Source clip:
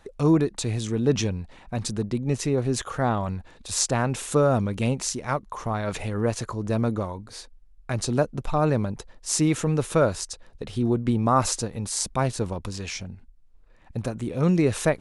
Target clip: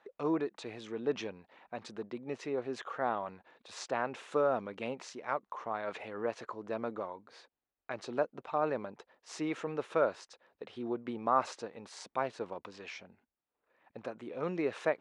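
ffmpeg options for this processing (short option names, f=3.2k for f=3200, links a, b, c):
-af "highpass=410,lowpass=2.7k,volume=-6.5dB"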